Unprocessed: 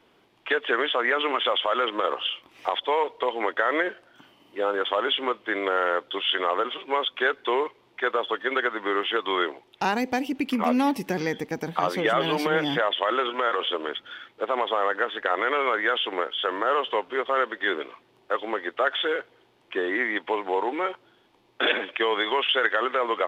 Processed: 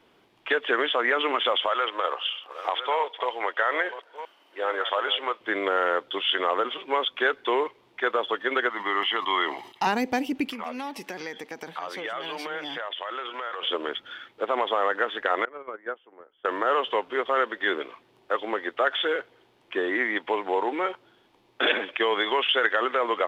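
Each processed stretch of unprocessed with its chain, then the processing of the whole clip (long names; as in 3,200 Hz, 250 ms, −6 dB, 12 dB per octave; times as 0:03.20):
0:01.68–0:05.41: delay that plays each chunk backwards 643 ms, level −11.5 dB + high-pass filter 550 Hz + high-shelf EQ 6,000 Hz −4 dB
0:08.70–0:09.87: high-pass filter 400 Hz 6 dB per octave + comb filter 1 ms, depth 61% + level that may fall only so fast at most 95 dB per second
0:10.51–0:13.63: meter weighting curve A + downward compressor 2.5 to 1, threshold −33 dBFS
0:15.45–0:16.45: noise gate −22 dBFS, range −22 dB + low-pass filter 1,300 Hz
whole clip: no processing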